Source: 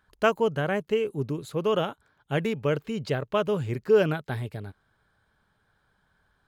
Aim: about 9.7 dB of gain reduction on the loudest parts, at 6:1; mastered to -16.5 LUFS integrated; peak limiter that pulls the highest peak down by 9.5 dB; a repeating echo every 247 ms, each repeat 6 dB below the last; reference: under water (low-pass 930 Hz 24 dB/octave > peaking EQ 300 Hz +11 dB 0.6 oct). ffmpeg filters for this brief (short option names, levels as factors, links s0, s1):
-af "acompressor=threshold=0.0562:ratio=6,alimiter=level_in=1.19:limit=0.0631:level=0:latency=1,volume=0.841,lowpass=f=930:w=0.5412,lowpass=f=930:w=1.3066,equalizer=f=300:t=o:w=0.6:g=11,aecho=1:1:247|494|741|988|1235|1482:0.501|0.251|0.125|0.0626|0.0313|0.0157,volume=5.62"